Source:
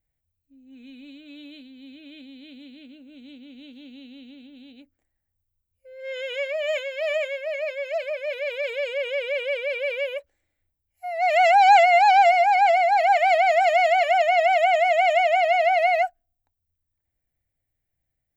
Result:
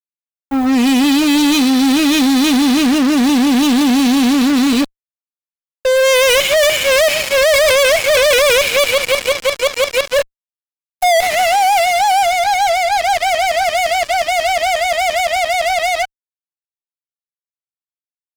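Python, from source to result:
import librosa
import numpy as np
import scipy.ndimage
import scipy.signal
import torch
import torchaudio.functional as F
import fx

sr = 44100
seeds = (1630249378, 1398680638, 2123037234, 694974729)

y = fx.gate_flip(x, sr, shuts_db=-19.0, range_db=-33)
y = fx.echo_wet_highpass(y, sr, ms=71, feedback_pct=83, hz=5400.0, wet_db=-8.0)
y = fx.fuzz(y, sr, gain_db=56.0, gate_db=-55.0)
y = y * librosa.db_to_amplitude(3.0)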